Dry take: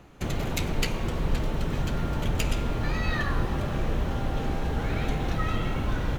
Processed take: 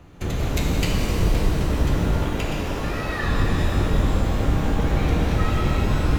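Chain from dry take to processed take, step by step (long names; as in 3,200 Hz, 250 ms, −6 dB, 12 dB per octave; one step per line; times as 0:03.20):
sub-octave generator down 1 octave, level +4 dB
0:02.17–0:03.23: bass and treble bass −10 dB, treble −8 dB
reverb with rising layers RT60 3 s, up +12 semitones, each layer −8 dB, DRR −1.5 dB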